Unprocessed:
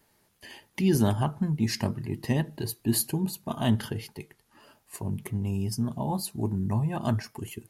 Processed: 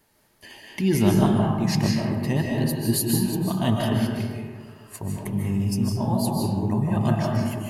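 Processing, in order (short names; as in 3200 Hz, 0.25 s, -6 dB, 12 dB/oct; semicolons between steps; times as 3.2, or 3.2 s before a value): digital reverb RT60 1.7 s, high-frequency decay 0.45×, pre-delay 0.11 s, DRR -2 dB; gain +1.5 dB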